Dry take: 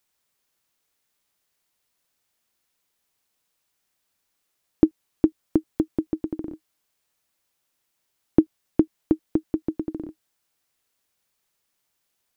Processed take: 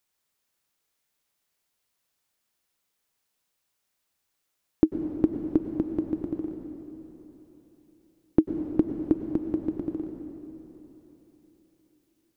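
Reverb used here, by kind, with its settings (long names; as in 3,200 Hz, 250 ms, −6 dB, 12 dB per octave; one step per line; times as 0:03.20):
dense smooth reverb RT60 3.8 s, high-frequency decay 0.85×, pre-delay 85 ms, DRR 5.5 dB
level −3.5 dB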